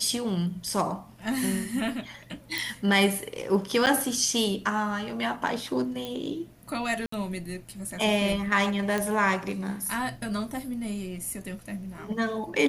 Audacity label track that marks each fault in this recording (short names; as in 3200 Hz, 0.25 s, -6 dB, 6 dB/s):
2.580000	2.580000	pop
3.860000	3.870000	gap 8.6 ms
6.050000	6.050000	pop
7.060000	7.120000	gap 64 ms
8.980000	8.980000	pop -14 dBFS